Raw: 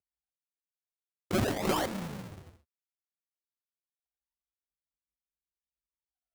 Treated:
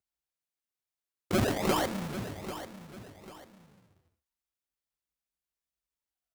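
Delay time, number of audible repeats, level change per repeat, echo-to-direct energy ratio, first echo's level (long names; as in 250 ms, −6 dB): 793 ms, 2, −9.5 dB, −11.5 dB, −12.0 dB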